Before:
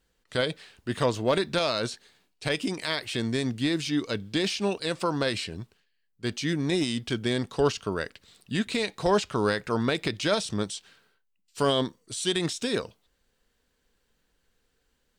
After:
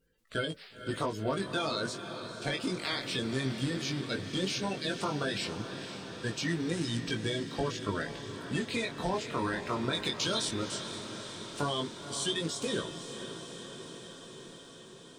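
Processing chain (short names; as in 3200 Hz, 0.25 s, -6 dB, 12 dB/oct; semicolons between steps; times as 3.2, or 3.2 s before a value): bin magnitudes rounded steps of 30 dB; 9.93–10.52 resonant high shelf 2500 Hz +7.5 dB, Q 1.5; compressor, threshold -27 dBFS, peak gain reduction 9 dB; chorus 0.15 Hz, delay 18 ms, depth 4.7 ms; on a send: diffused feedback echo 0.5 s, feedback 73%, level -10 dB; on the sum: gain +1.5 dB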